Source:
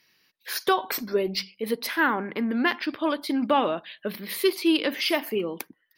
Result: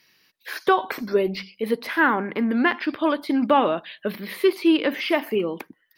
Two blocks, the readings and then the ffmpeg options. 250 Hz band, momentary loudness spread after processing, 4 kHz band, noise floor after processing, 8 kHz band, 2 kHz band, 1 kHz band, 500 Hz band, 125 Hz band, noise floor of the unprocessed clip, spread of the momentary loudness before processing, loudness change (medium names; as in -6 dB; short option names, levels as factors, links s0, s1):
+4.0 dB, 11 LU, -2.5 dB, -66 dBFS, no reading, +3.0 dB, +4.0 dB, +4.0 dB, +4.0 dB, -70 dBFS, 9 LU, +3.5 dB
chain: -filter_complex "[0:a]acrossover=split=2800[s0][s1];[s1]acompressor=threshold=0.00562:ratio=4:attack=1:release=60[s2];[s0][s2]amix=inputs=2:normalize=0,volume=1.58"